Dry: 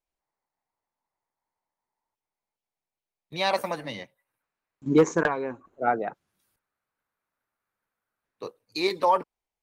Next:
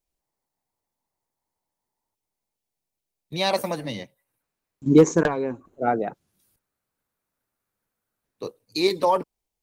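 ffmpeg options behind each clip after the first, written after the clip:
-af "equalizer=f=1.4k:w=0.47:g=-10,volume=8dB"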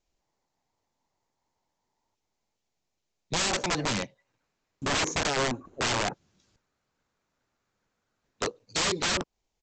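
-af "acompressor=threshold=-29dB:ratio=2,aresample=16000,aeval=exprs='(mod(22.4*val(0)+1,2)-1)/22.4':c=same,aresample=44100,volume=5.5dB"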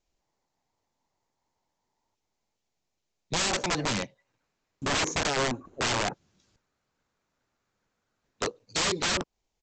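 -af anull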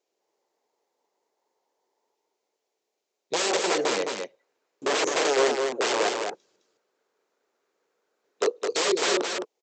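-af "highpass=f=420:t=q:w=3.4,aecho=1:1:212:0.596"

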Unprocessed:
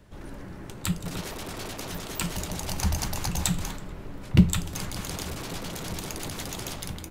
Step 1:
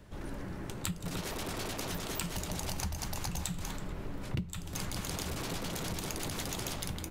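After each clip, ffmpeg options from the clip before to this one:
-af "acompressor=threshold=-32dB:ratio=12"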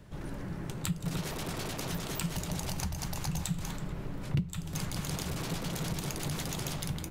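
-af "equalizer=f=150:t=o:w=0.35:g=11.5"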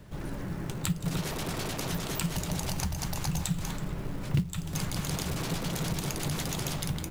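-af "acrusher=bits=6:mode=log:mix=0:aa=0.000001,volume=3dB"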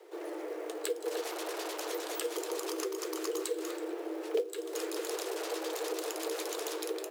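-af "afreqshift=310,volume=-4.5dB"

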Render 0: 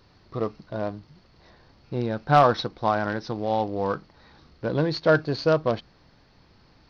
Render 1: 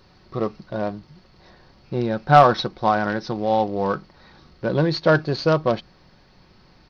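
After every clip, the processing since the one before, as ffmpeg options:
-af "aecho=1:1:5.4:0.32,volume=3.5dB"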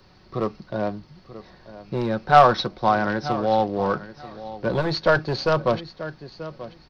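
-filter_complex "[0:a]aecho=1:1:935|1870:0.158|0.0285,acrossover=split=100|390|2100[a][b][c][d];[b]aeval=exprs='0.0668*(abs(mod(val(0)/0.0668+3,4)-2)-1)':c=same[e];[a][e][c][d]amix=inputs=4:normalize=0"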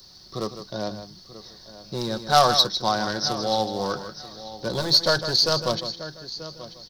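-af "aecho=1:1:155:0.299,aexciter=amount=7:drive=8.6:freq=3.8k,volume=-4.5dB"

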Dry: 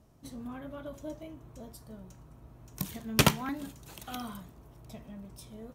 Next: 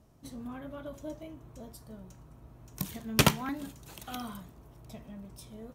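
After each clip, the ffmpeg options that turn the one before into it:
-af anull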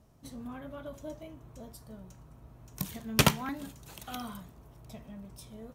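-af "equalizer=f=320:w=2.8:g=-3"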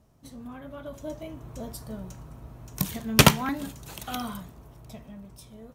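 -af "dynaudnorm=f=290:g=9:m=12dB"

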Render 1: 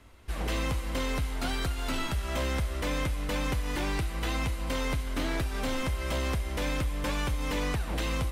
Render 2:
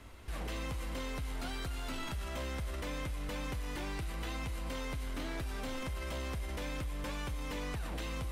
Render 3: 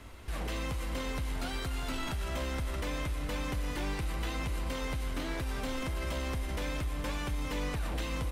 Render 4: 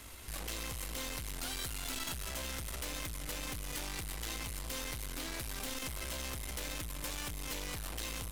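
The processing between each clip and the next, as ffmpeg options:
-af "alimiter=level_in=11dB:limit=-24dB:level=0:latency=1:release=12,volume=-11dB,volume=2.5dB"
-filter_complex "[0:a]asplit=2[a][b];[b]adelay=641.4,volume=-10dB,highshelf=f=4k:g=-14.4[c];[a][c]amix=inputs=2:normalize=0,volume=3.5dB"
-af "aeval=exprs='(tanh(79.4*val(0)+0.4)-tanh(0.4))/79.4':c=same,crystalizer=i=4.5:c=0,volume=-2.5dB"

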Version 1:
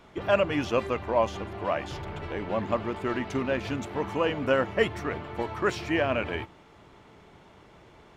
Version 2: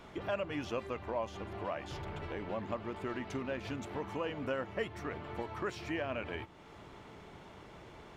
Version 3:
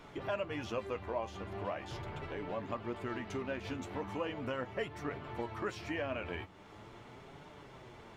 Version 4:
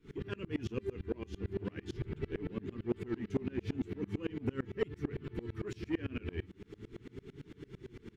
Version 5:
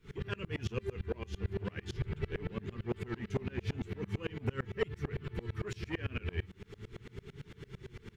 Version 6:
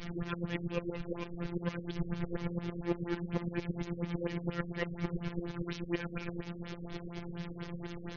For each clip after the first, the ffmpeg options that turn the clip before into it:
-af "acompressor=threshold=-45dB:ratio=2,volume=1dB"
-af "flanger=delay=6.6:depth=4.9:regen=45:speed=0.4:shape=triangular,volume=3.5dB"
-af "firequalizer=gain_entry='entry(420,0);entry(600,-30);entry(1600,-10)':delay=0.05:min_phase=1,asoftclip=type=tanh:threshold=-33.5dB,aeval=exprs='val(0)*pow(10,-29*if(lt(mod(-8.9*n/s,1),2*abs(-8.9)/1000),1-mod(-8.9*n/s,1)/(2*abs(-8.9)/1000),(mod(-8.9*n/s,1)-2*abs(-8.9)/1000)/(1-2*abs(-8.9)/1000))/20)':c=same,volume=14dB"
-af "equalizer=f=290:w=1.9:g=-14,volume=5dB"
-af "aeval=exprs='val(0)+0.5*0.0119*sgn(val(0))':c=same,afftfilt=real='hypot(re,im)*cos(PI*b)':imag='0':win_size=1024:overlap=0.75,afftfilt=real='re*lt(b*sr/1024,500*pow(6800/500,0.5+0.5*sin(2*PI*4.2*pts/sr)))':imag='im*lt(b*sr/1024,500*pow(6800/500,0.5+0.5*sin(2*PI*4.2*pts/sr)))':win_size=1024:overlap=0.75,volume=4dB"

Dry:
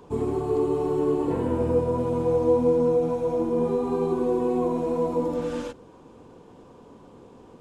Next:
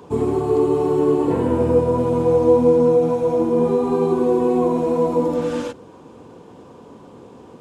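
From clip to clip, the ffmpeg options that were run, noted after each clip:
-af "highpass=74,volume=6.5dB"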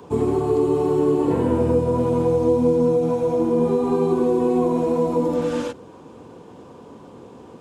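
-filter_complex "[0:a]acrossover=split=340|3000[a][b][c];[b]acompressor=threshold=-20dB:ratio=6[d];[a][d][c]amix=inputs=3:normalize=0"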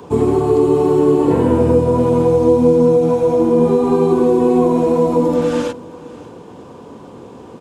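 -af "aecho=1:1:580:0.0891,volume=6dB"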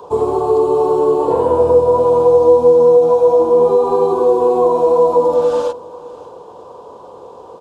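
-af "equalizer=f=125:t=o:w=1:g=-5,equalizer=f=250:t=o:w=1:g=-11,equalizer=f=500:t=o:w=1:g=10,equalizer=f=1k:t=o:w=1:g=11,equalizer=f=2k:t=o:w=1:g=-11,equalizer=f=4k:t=o:w=1:g=5,volume=-5dB"

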